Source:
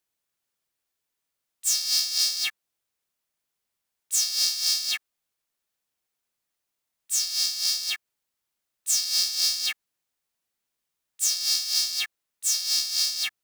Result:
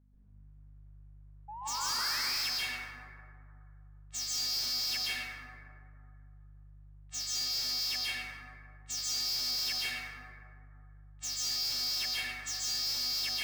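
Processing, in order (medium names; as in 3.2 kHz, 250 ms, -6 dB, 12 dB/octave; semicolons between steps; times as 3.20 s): level-controlled noise filter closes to 1.4 kHz, open at -19.5 dBFS; steep low-pass 8.1 kHz; treble shelf 4.4 kHz -8 dB; hard clipper -31 dBFS, distortion -6 dB; painted sound rise, 1.48–2.21 s, 810–2700 Hz -42 dBFS; hum 50 Hz, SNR 24 dB; plate-style reverb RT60 2.3 s, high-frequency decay 0.3×, pre-delay 120 ms, DRR -8.5 dB; saturation -27.5 dBFS, distortion -12 dB; trim -1.5 dB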